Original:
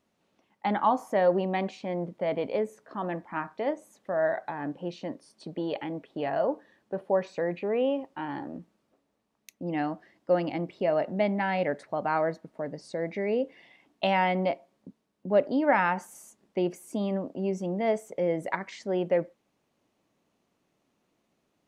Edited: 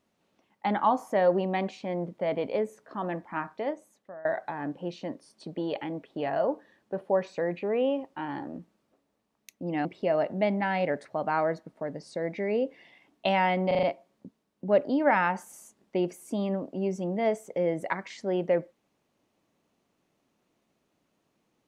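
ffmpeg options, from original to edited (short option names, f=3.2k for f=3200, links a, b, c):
-filter_complex "[0:a]asplit=7[a][b][c][d][e][f][g];[a]atrim=end=4.25,asetpts=PTS-STARTPTS,afade=t=out:st=3.5:d=0.75:silence=0.0707946[h];[b]atrim=start=4.25:end=9.852,asetpts=PTS-STARTPTS,afade=t=in:d=0.004:c=hsin:silence=0.0707946[i];[c]atrim=start=10.628:end=14.492[j];[d]atrim=start=14.448:end=14.492[k];[e]atrim=start=14.448:end=14.492[l];[f]atrim=start=14.448:end=14.492[m];[g]atrim=start=14.448[n];[h][i]concat=n=2:v=0:a=1[o];[o][j]acrossfade=d=0.004:c1=hsin:c2=hsin[p];[p][k]acrossfade=d=0.004:c1=hsin:c2=hsin[q];[q][l]acrossfade=d=0.004:c1=hsin:c2=hsin[r];[r][m]acrossfade=d=0.004:c1=hsin:c2=hsin[s];[s][n]acrossfade=d=0.004:c1=hsin:c2=hsin"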